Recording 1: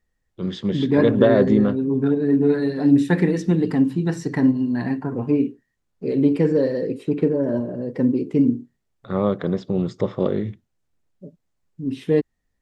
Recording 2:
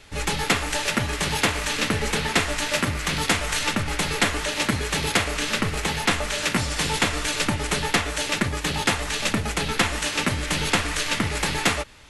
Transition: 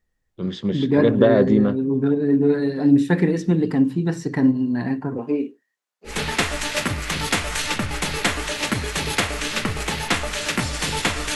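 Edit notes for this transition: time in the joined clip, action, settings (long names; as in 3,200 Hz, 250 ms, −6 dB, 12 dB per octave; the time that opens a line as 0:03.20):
recording 1
0:05.17–0:06.20: high-pass filter 240 Hz → 1,200 Hz
0:06.12: continue with recording 2 from 0:02.09, crossfade 0.16 s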